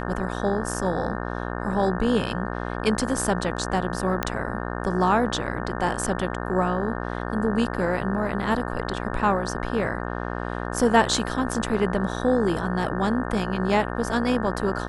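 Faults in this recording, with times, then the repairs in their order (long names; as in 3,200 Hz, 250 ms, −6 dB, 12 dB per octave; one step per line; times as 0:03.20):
mains buzz 60 Hz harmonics 30 −30 dBFS
0:04.23: click −8 dBFS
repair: click removal
hum removal 60 Hz, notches 30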